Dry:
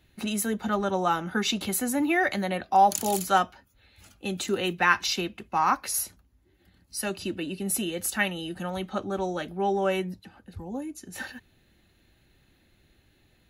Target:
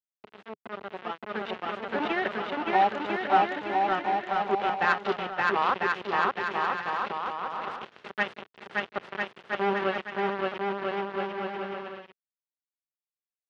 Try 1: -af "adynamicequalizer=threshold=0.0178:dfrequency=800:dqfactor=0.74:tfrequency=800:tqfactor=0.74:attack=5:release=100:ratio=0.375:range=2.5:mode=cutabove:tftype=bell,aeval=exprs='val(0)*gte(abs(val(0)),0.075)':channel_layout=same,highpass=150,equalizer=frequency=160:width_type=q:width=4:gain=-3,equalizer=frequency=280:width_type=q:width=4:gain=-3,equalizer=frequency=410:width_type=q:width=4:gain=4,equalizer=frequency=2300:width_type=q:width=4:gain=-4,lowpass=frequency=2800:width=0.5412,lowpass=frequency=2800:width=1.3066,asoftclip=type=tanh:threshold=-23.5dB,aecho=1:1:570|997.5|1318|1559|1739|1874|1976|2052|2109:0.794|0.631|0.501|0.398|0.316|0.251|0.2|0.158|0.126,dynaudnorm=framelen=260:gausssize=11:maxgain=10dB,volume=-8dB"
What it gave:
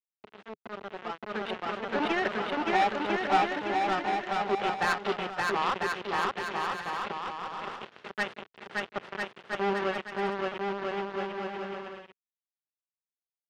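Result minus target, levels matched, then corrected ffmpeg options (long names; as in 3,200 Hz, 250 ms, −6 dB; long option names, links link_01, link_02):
soft clipping: distortion +12 dB
-af "adynamicequalizer=threshold=0.0178:dfrequency=800:dqfactor=0.74:tfrequency=800:tqfactor=0.74:attack=5:release=100:ratio=0.375:range=2.5:mode=cutabove:tftype=bell,aeval=exprs='val(0)*gte(abs(val(0)),0.075)':channel_layout=same,highpass=150,equalizer=frequency=160:width_type=q:width=4:gain=-3,equalizer=frequency=280:width_type=q:width=4:gain=-3,equalizer=frequency=410:width_type=q:width=4:gain=4,equalizer=frequency=2300:width_type=q:width=4:gain=-4,lowpass=frequency=2800:width=0.5412,lowpass=frequency=2800:width=1.3066,asoftclip=type=tanh:threshold=-12.5dB,aecho=1:1:570|997.5|1318|1559|1739|1874|1976|2052|2109:0.794|0.631|0.501|0.398|0.316|0.251|0.2|0.158|0.126,dynaudnorm=framelen=260:gausssize=11:maxgain=10dB,volume=-8dB"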